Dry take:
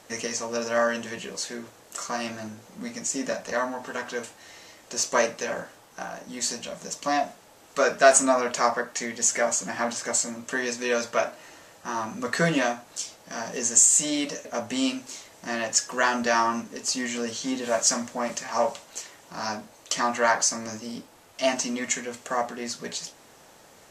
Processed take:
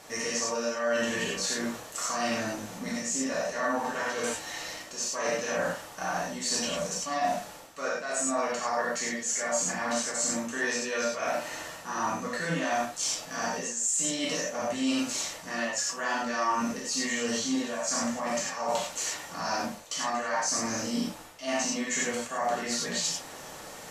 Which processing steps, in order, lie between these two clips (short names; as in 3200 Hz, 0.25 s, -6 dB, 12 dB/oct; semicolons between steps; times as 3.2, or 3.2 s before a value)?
reverse; compressor 16:1, threshold -35 dBFS, peak gain reduction 24.5 dB; reverse; non-linear reverb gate 0.13 s flat, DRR -6 dB; gain +2.5 dB